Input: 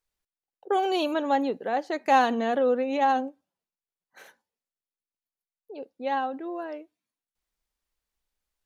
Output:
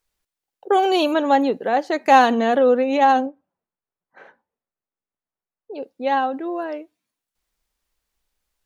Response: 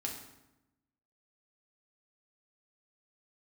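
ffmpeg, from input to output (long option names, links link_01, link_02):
-filter_complex "[0:a]asettb=1/sr,asplit=3[link_01][link_02][link_03];[link_01]atrim=end=3.264[link_04];[link_02]atrim=start=3.26:end=5.73,asetpts=PTS-STARTPTS,afade=type=in:duration=0.004:curve=qsin,afade=type=out:start_time=2.466:duration=0.004:curve=qsin,lowpass=1500[link_05];[link_03]atrim=start=5.726[link_06];[link_04][link_05]acrossfade=duration=0.004:curve1=hsin:curve2=qsin[link_07];[link_07][link_06]acrossfade=duration=0.004:curve1=qsin:curve2=hsin,volume=7.5dB"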